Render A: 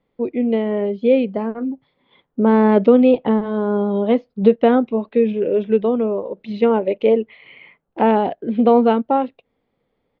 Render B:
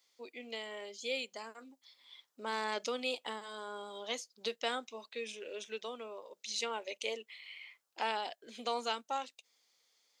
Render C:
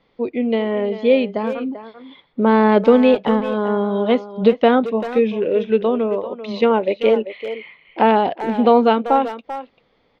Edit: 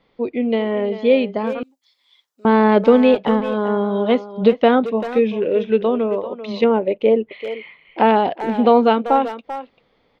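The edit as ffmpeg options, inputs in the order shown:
ffmpeg -i take0.wav -i take1.wav -i take2.wav -filter_complex "[2:a]asplit=3[link_01][link_02][link_03];[link_01]atrim=end=1.632[link_04];[1:a]atrim=start=1.628:end=2.452[link_05];[link_02]atrim=start=2.448:end=6.642[link_06];[0:a]atrim=start=6.638:end=7.312[link_07];[link_03]atrim=start=7.308[link_08];[link_04][link_05]acrossfade=duration=0.004:curve1=hsin:curve2=hsin[link_09];[link_09][link_06]acrossfade=duration=0.004:curve1=hsin:curve2=hsin[link_10];[link_10][link_07]acrossfade=duration=0.004:curve1=hsin:curve2=hsin[link_11];[link_11][link_08]acrossfade=duration=0.004:curve1=hsin:curve2=hsin" out.wav

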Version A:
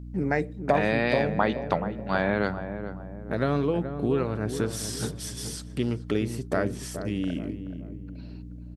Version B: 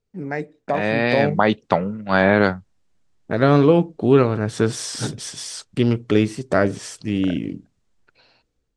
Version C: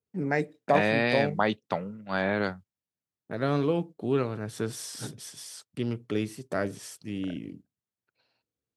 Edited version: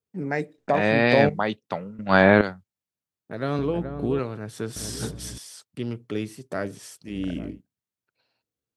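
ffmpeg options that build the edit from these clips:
ffmpeg -i take0.wav -i take1.wav -i take2.wav -filter_complex "[1:a]asplit=2[link_01][link_02];[0:a]asplit=3[link_03][link_04][link_05];[2:a]asplit=6[link_06][link_07][link_08][link_09][link_10][link_11];[link_06]atrim=end=0.582[link_12];[link_01]atrim=start=0.578:end=1.292[link_13];[link_07]atrim=start=1.288:end=1.992[link_14];[link_02]atrim=start=1.988:end=2.412[link_15];[link_08]atrim=start=2.408:end=3.592[link_16];[link_03]atrim=start=3.588:end=4.192[link_17];[link_09]atrim=start=4.188:end=4.762[link_18];[link_04]atrim=start=4.758:end=5.382[link_19];[link_10]atrim=start=5.378:end=7.21[link_20];[link_05]atrim=start=7.05:end=7.61[link_21];[link_11]atrim=start=7.45[link_22];[link_12][link_13]acrossfade=duration=0.004:curve1=hsin:curve2=hsin[link_23];[link_23][link_14]acrossfade=duration=0.004:curve1=hsin:curve2=hsin[link_24];[link_24][link_15]acrossfade=duration=0.004:curve1=hsin:curve2=hsin[link_25];[link_25][link_16]acrossfade=duration=0.004:curve1=hsin:curve2=hsin[link_26];[link_26][link_17]acrossfade=duration=0.004:curve1=hsin:curve2=hsin[link_27];[link_27][link_18]acrossfade=duration=0.004:curve1=hsin:curve2=hsin[link_28];[link_28][link_19]acrossfade=duration=0.004:curve1=hsin:curve2=hsin[link_29];[link_29][link_20]acrossfade=duration=0.004:curve1=hsin:curve2=hsin[link_30];[link_30][link_21]acrossfade=duration=0.16:curve1=tri:curve2=tri[link_31];[link_31][link_22]acrossfade=duration=0.16:curve1=tri:curve2=tri" out.wav

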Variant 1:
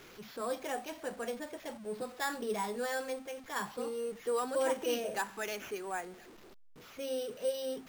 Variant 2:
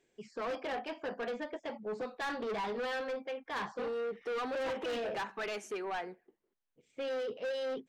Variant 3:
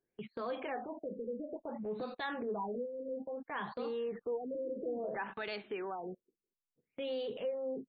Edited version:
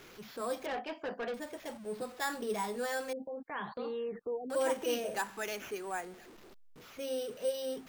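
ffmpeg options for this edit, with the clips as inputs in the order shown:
ffmpeg -i take0.wav -i take1.wav -i take2.wav -filter_complex "[0:a]asplit=3[link_01][link_02][link_03];[link_01]atrim=end=0.662[link_04];[1:a]atrim=start=0.658:end=1.342[link_05];[link_02]atrim=start=1.338:end=3.132[link_06];[2:a]atrim=start=3.128:end=4.502[link_07];[link_03]atrim=start=4.498[link_08];[link_04][link_05]acrossfade=duration=0.004:curve1=hsin:curve2=hsin[link_09];[link_09][link_06]acrossfade=duration=0.004:curve1=hsin:curve2=hsin[link_10];[link_10][link_07]acrossfade=duration=0.004:curve1=hsin:curve2=hsin[link_11];[link_11][link_08]acrossfade=duration=0.004:curve1=hsin:curve2=hsin" out.wav

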